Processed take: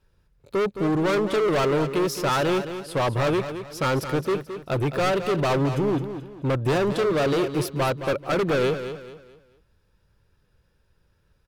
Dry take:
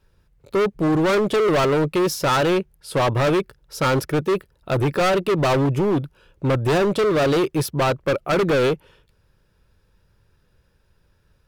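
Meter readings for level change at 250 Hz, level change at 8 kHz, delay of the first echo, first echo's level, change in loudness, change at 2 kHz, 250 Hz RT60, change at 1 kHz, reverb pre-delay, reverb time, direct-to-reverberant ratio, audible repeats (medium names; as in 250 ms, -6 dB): -3.5 dB, -4.0 dB, 217 ms, -10.0 dB, -3.5 dB, -3.5 dB, no reverb, -3.5 dB, no reverb, no reverb, no reverb, 3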